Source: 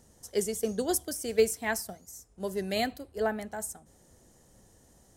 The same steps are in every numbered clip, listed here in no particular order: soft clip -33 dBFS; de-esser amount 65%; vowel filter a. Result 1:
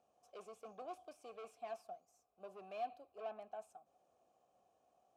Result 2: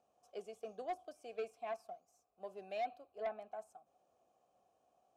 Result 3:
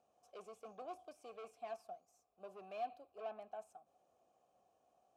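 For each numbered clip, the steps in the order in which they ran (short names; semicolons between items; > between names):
soft clip > de-esser > vowel filter; de-esser > vowel filter > soft clip; de-esser > soft clip > vowel filter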